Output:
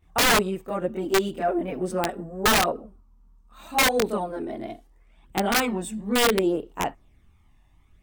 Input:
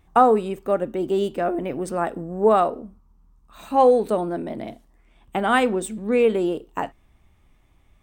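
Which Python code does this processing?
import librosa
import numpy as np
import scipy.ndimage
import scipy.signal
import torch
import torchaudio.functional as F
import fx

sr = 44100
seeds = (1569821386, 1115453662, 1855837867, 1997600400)

y = fx.chorus_voices(x, sr, voices=2, hz=0.37, base_ms=24, depth_ms=3.1, mix_pct=70)
y = (np.mod(10.0 ** (14.0 / 20.0) * y + 1.0, 2.0) - 1.0) / 10.0 ** (14.0 / 20.0)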